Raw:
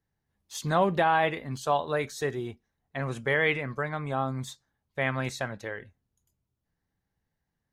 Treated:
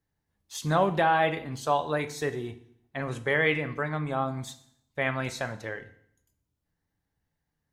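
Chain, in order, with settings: FDN reverb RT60 0.66 s, low-frequency decay 1.25×, high-frequency decay 1×, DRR 9.5 dB

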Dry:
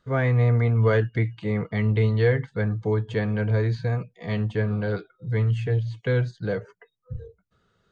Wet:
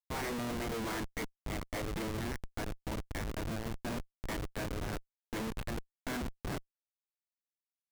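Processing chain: spectral gate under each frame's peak -15 dB weak; 2.08–3.79 compressor 20:1, threshold -34 dBFS, peak gain reduction 9.5 dB; 5.94–6.53 resonant high-pass 310 Hz -> 150 Hz, resonance Q 4.5; Schmitt trigger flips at -35 dBFS; gain +2 dB

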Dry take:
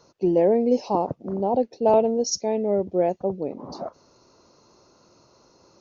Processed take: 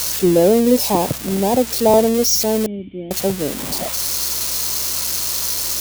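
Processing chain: switching spikes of -15 dBFS; low shelf 230 Hz +9.5 dB; hum 60 Hz, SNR 24 dB; 2.66–3.11 vocal tract filter i; gain +3.5 dB

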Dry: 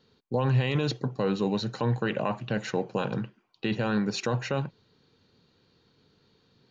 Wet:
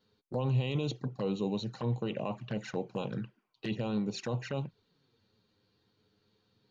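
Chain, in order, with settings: envelope flanger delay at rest 10.1 ms, full sweep at -24.5 dBFS; gain -5 dB

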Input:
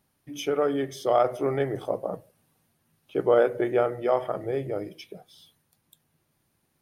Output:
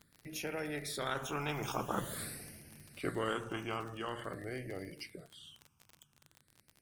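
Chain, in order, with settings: Doppler pass-by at 2.2, 25 m/s, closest 1.7 m; phaser stages 8, 0.47 Hz, lowest notch 540–1100 Hz; crackle 30/s -75 dBFS; spectral compressor 2:1; gain +17.5 dB

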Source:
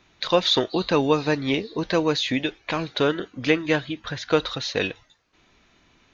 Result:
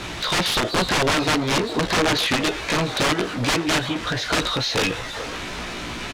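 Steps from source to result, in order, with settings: zero-crossing step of -29 dBFS; doubler 17 ms -3 dB; wrapped overs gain 15.5 dB; air absorption 64 m; on a send: delay with a stepping band-pass 0.415 s, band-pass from 590 Hz, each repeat 0.7 oct, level -9 dB; on the sum: gain +2.5 dB

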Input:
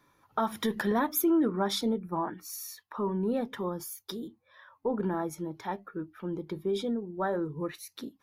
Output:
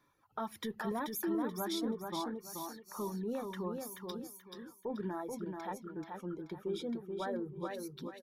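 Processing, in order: reverb removal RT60 1.1 s; limiter -23.5 dBFS, peak gain reduction 6.5 dB; on a send: feedback echo 0.432 s, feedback 29%, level -4.5 dB; on the sum: gain -6.5 dB

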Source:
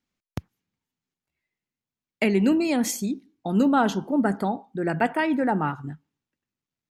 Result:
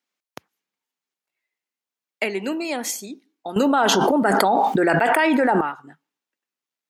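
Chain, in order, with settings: HPF 470 Hz 12 dB/oct; 3.56–5.61 fast leveller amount 100%; gain +2 dB

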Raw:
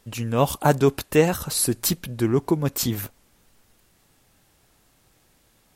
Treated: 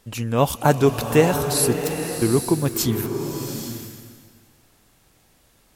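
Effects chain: 1.77–2.22 power-law curve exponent 3; bloom reverb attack 0.82 s, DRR 5.5 dB; gain +1.5 dB

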